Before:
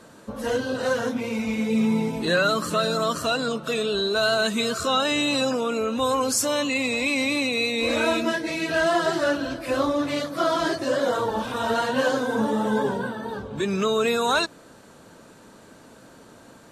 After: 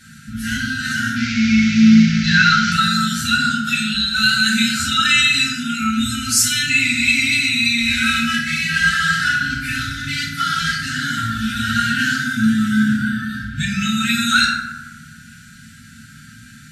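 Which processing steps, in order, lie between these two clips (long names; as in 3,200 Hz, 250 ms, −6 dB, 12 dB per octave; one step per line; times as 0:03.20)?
0:01.16–0:02.72: linear delta modulator 32 kbit/s, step −26 dBFS
linear-phase brick-wall band-stop 250–1,300 Hz
feedback delay network reverb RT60 1.2 s, low-frequency decay 1.05×, high-frequency decay 0.45×, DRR −5.5 dB
level +5 dB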